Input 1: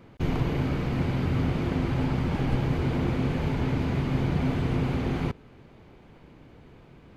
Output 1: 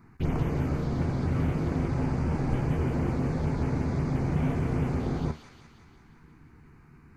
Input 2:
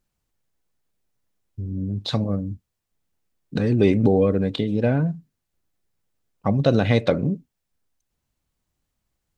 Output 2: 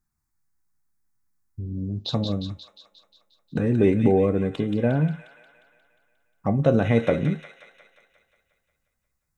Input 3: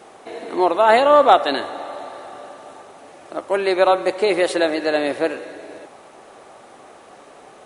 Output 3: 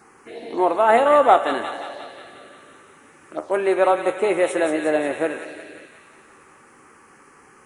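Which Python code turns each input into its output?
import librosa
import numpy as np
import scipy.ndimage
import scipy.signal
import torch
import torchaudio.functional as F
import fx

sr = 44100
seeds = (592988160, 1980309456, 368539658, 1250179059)

y = fx.comb_fb(x, sr, f0_hz=77.0, decay_s=0.28, harmonics='all', damping=0.0, mix_pct=60)
y = fx.env_phaser(y, sr, low_hz=520.0, high_hz=4600.0, full_db=-25.5)
y = fx.echo_wet_highpass(y, sr, ms=178, feedback_pct=60, hz=1800.0, wet_db=-4.5)
y = F.gain(torch.from_numpy(y), 3.5).numpy()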